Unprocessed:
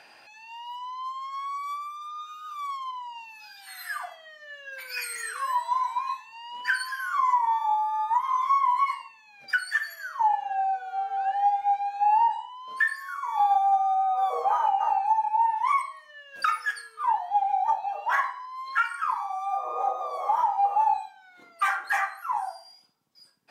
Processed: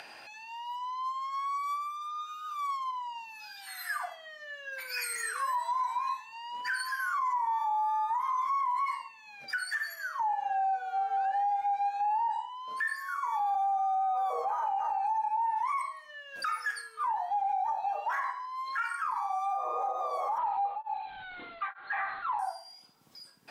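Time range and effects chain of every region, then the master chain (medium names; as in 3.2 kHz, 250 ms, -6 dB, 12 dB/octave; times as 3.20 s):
20.38–22.39 s: jump at every zero crossing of -41 dBFS + steep low-pass 4.1 kHz 96 dB/octave + tremolo of two beating tones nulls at 1.1 Hz
whole clip: dynamic bell 3.1 kHz, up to -7 dB, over -52 dBFS, Q 3.2; peak limiter -24.5 dBFS; upward compressor, threshold -43 dBFS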